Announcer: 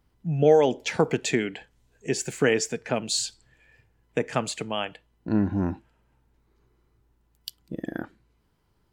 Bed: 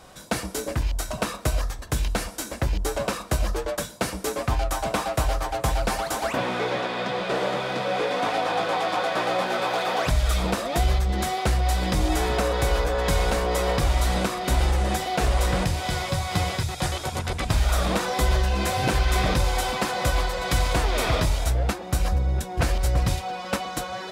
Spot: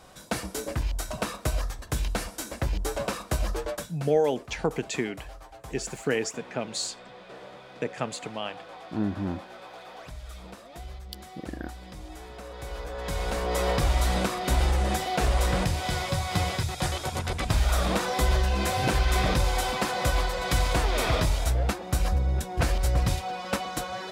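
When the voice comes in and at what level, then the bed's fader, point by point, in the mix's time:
3.65 s, −5.0 dB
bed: 0:03.71 −3.5 dB
0:04.14 −19.5 dB
0:12.35 −19.5 dB
0:13.63 −2 dB

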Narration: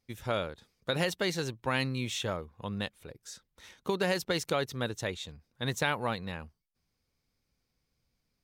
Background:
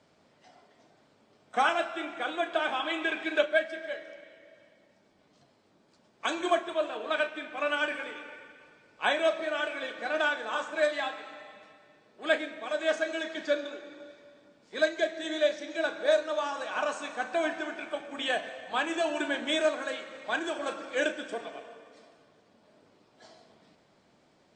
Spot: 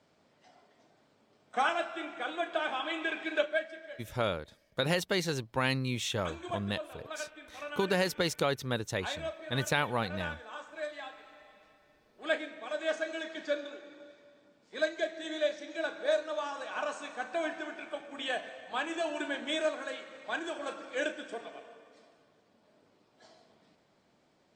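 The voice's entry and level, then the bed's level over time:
3.90 s, +0.5 dB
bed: 0:03.38 −3.5 dB
0:04.10 −12 dB
0:10.89 −12 dB
0:12.23 −4.5 dB

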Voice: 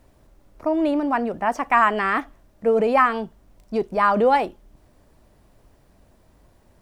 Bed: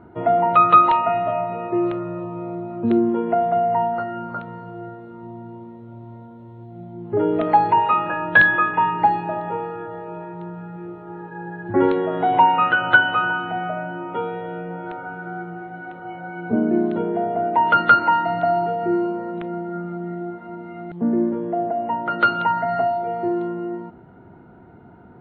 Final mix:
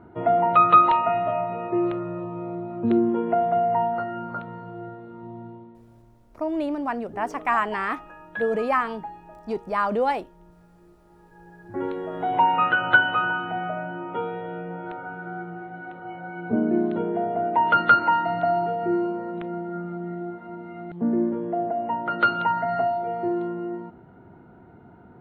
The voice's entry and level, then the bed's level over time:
5.75 s, −5.5 dB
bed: 0:05.46 −2.5 dB
0:06.23 −20.5 dB
0:11.09 −20.5 dB
0:12.59 −3 dB

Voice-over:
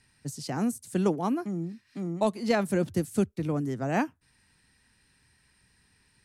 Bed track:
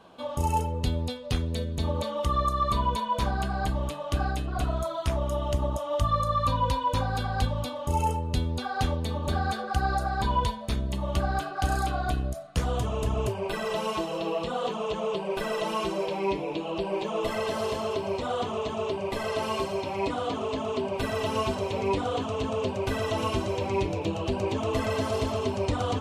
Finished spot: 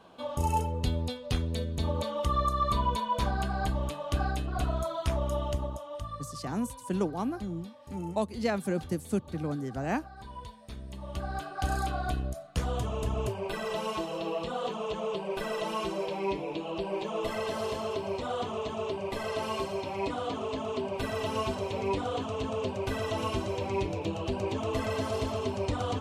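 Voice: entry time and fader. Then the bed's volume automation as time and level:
5.95 s, −4.0 dB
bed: 0:05.40 −2 dB
0:06.37 −19 dB
0:10.31 −19 dB
0:11.68 −3.5 dB

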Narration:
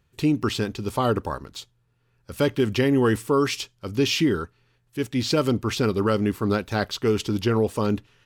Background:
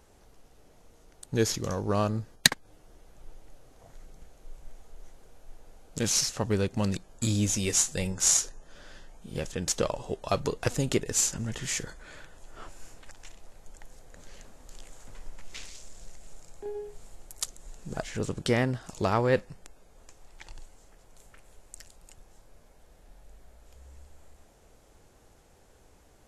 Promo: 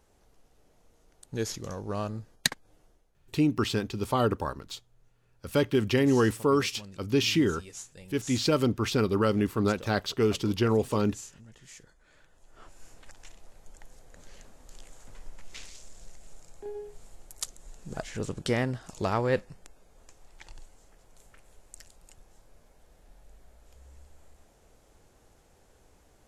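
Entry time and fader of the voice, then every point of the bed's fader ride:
3.15 s, −3.0 dB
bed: 0:02.84 −6 dB
0:03.11 −18.5 dB
0:11.80 −18.5 dB
0:13.02 −2 dB

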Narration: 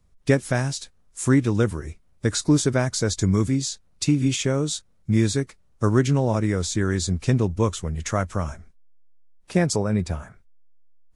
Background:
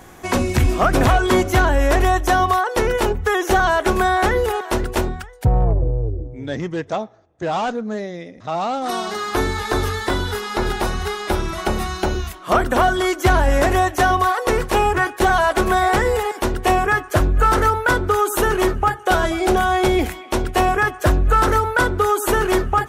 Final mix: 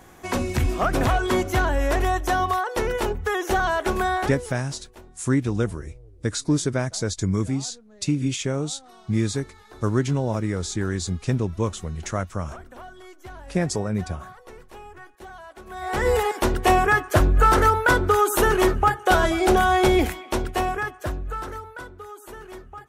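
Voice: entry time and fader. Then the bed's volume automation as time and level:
4.00 s, −3.0 dB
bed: 0:04.16 −6 dB
0:04.63 −26 dB
0:15.63 −26 dB
0:16.09 −1 dB
0:20.08 −1 dB
0:21.95 −22.5 dB

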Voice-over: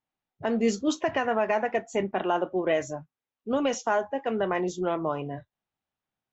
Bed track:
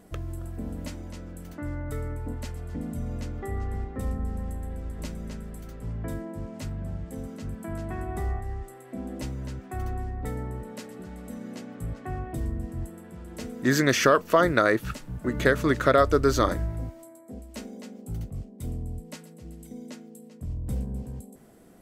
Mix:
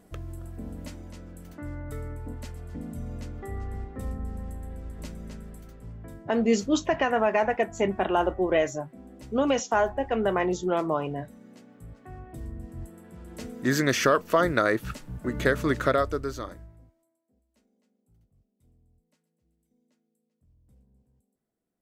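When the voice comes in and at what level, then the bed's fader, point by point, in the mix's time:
5.85 s, +2.0 dB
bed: 0:05.49 −3.5 dB
0:06.24 −11.5 dB
0:11.88 −11.5 dB
0:13.30 −2 dB
0:15.85 −2 dB
0:17.26 −30.5 dB

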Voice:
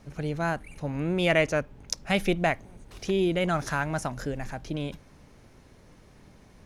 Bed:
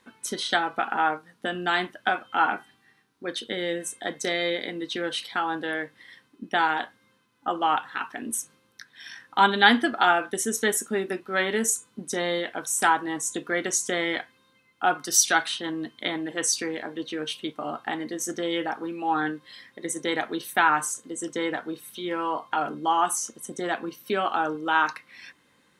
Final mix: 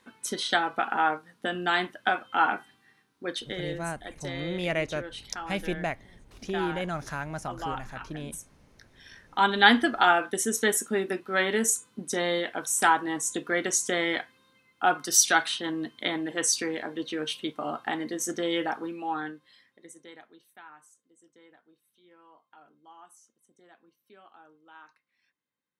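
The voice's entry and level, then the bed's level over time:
3.40 s, −6.0 dB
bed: 0:03.31 −1 dB
0:03.95 −11 dB
0:08.92 −11 dB
0:09.67 −0.5 dB
0:18.74 −0.5 dB
0:20.61 −29 dB

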